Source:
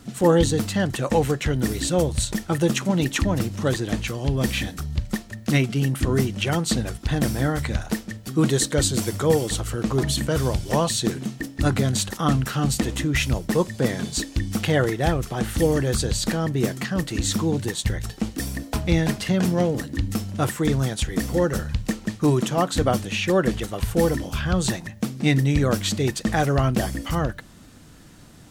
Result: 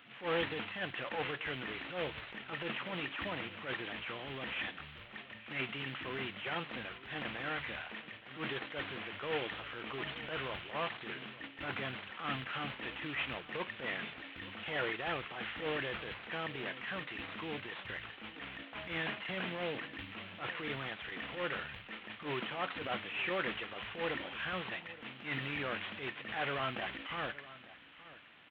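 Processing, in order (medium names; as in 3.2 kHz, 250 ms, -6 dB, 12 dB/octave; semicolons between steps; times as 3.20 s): CVSD coder 16 kbps; differentiator; transient shaper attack -12 dB, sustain +3 dB; delay 874 ms -17.5 dB; trim +9 dB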